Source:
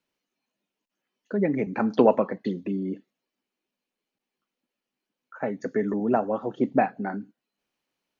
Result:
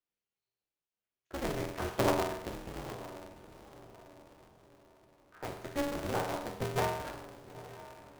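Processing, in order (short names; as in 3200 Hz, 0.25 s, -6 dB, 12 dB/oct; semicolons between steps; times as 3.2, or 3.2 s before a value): HPF 57 Hz 24 dB/oct; low shelf 81 Hz +8.5 dB; notches 50/100/150/200/250 Hz; in parallel at -4.5 dB: bit-crush 4-bit; on the sum: resonator 86 Hz, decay 0.87 s, harmonics all, mix 90%; on a send: diffused feedback echo 0.904 s, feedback 42%, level -15 dB; on the sum: polarity switched at an audio rate 140 Hz; gain -2 dB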